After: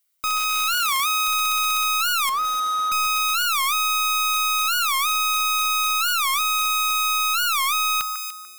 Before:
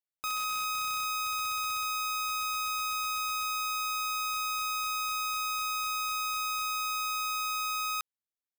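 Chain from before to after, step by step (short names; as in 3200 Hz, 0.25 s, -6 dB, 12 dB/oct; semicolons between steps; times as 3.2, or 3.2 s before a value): 2.3–2.92 delta modulation 64 kbps, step -57 dBFS; high shelf 9500 Hz +10 dB; notch 470 Hz, Q 12; notch comb 860 Hz; in parallel at -2 dB: limiter -30.5 dBFS, peak gain reduction 9 dB; on the sum: tilt shelf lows -6 dB, about 760 Hz; 6.34–7.05 short-mantissa float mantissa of 2-bit; on a send: echo with dull and thin repeats by turns 0.147 s, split 2000 Hz, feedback 54%, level -9.5 dB; on the sum: AGC gain up to 5 dB; soft clip -26 dBFS, distortion -2 dB; 0.74–1.28 HPF 55 Hz; record warp 45 rpm, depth 250 cents; gain +8 dB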